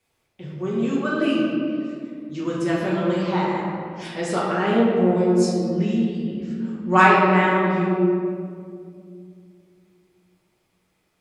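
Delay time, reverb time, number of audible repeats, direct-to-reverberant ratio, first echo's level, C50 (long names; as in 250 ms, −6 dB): no echo audible, 2.3 s, no echo audible, −7.5 dB, no echo audible, −1.0 dB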